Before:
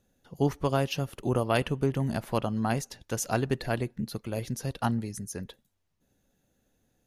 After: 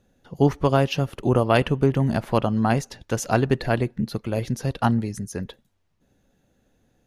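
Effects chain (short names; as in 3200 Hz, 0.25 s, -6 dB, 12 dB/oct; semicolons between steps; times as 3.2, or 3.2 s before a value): LPF 3700 Hz 6 dB/oct; gain +7.5 dB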